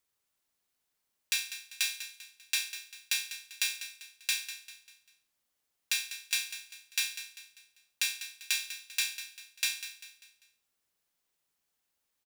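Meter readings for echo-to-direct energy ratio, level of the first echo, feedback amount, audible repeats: -11.0 dB, -12.0 dB, 41%, 3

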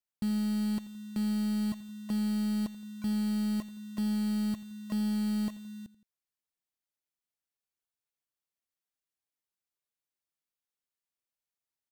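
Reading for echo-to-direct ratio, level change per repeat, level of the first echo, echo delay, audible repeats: -17.0 dB, -6.0 dB, -18.0 dB, 84 ms, 2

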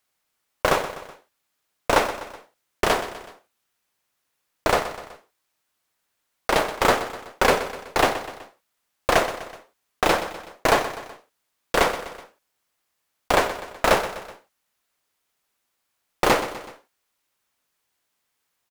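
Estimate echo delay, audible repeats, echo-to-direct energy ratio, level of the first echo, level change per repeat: 125 ms, 3, -11.5 dB, -12.5 dB, -6.0 dB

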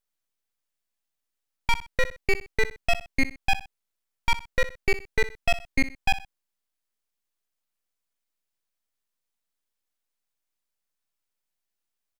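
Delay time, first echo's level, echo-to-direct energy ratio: 62 ms, -14.5 dB, -14.0 dB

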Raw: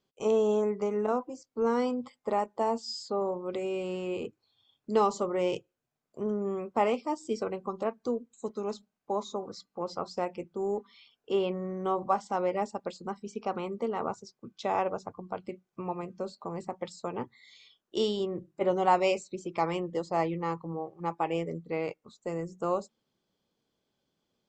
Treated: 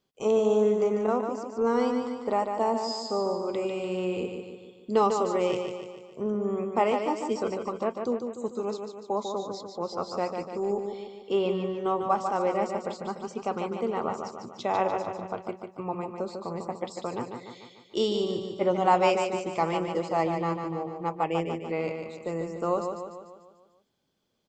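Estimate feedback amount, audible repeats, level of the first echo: 53%, 6, -6.0 dB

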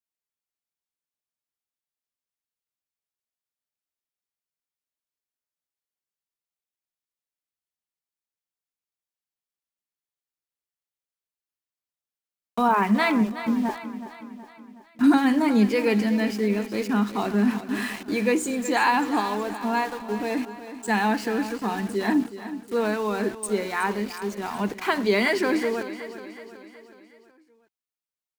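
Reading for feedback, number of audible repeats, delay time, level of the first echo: 52%, 4, 371 ms, -12.5 dB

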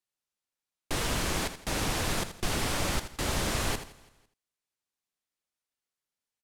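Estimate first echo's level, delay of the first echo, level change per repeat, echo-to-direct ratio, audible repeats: -11.0 dB, 81 ms, no regular repeats, -10.5 dB, 4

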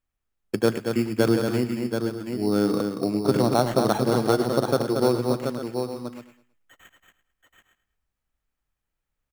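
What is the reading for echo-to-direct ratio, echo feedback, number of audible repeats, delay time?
-2.5 dB, no regular repeats, 7, 107 ms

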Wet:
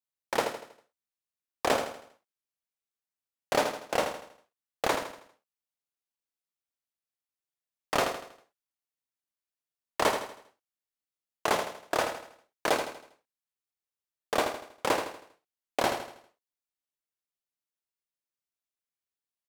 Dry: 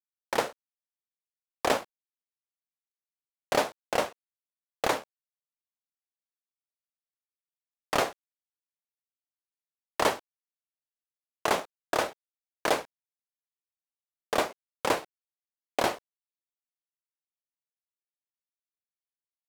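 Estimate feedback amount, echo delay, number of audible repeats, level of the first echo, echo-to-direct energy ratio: 42%, 80 ms, 4, -7.5 dB, -6.5 dB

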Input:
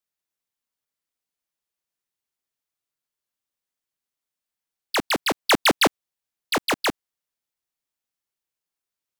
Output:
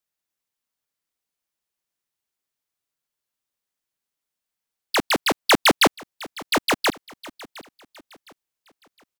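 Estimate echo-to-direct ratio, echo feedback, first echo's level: -19.5 dB, 38%, -20.0 dB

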